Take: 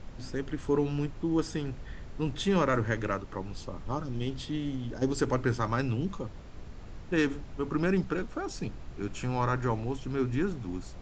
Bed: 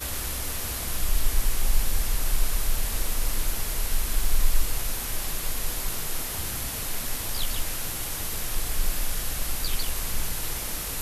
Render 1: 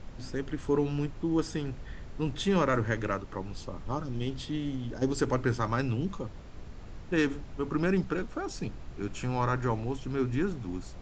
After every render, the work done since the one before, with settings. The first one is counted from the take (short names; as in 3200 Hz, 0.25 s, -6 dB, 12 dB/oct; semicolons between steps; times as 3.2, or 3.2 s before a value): nothing audible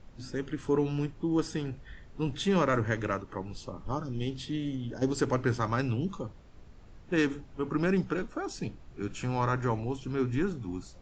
noise print and reduce 8 dB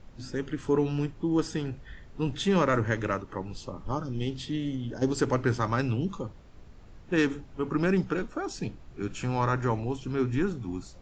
gain +2 dB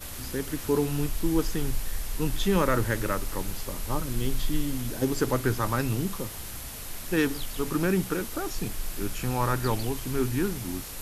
add bed -7.5 dB